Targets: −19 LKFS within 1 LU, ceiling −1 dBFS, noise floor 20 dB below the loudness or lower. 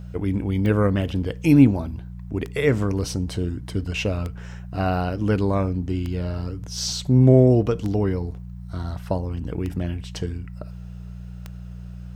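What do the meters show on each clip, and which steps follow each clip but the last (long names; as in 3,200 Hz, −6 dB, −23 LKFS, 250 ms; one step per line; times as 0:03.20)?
number of clicks 7; mains hum 60 Hz; hum harmonics up to 180 Hz; level of the hum −33 dBFS; integrated loudness −22.5 LKFS; sample peak −2.5 dBFS; target loudness −19.0 LKFS
→ click removal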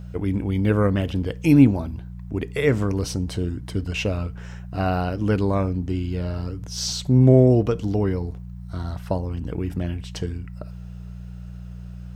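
number of clicks 0; mains hum 60 Hz; hum harmonics up to 180 Hz; level of the hum −33 dBFS
→ hum removal 60 Hz, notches 3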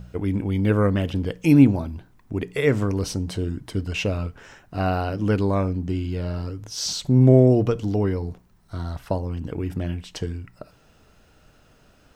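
mains hum none found; integrated loudness −22.5 LKFS; sample peak −2.5 dBFS; target loudness −19.0 LKFS
→ level +3.5 dB
brickwall limiter −1 dBFS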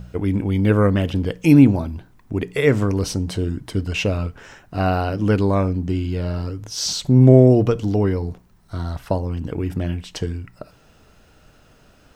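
integrated loudness −19.5 LKFS; sample peak −1.0 dBFS; background noise floor −53 dBFS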